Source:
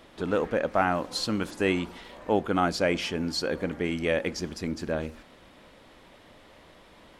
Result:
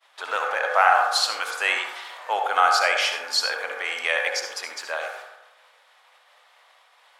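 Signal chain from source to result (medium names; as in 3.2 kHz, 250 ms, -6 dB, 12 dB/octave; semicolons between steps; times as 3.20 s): expander -45 dBFS; high-pass 800 Hz 24 dB/octave; reverberation RT60 0.95 s, pre-delay 61 ms, DRR 2 dB; trim +8.5 dB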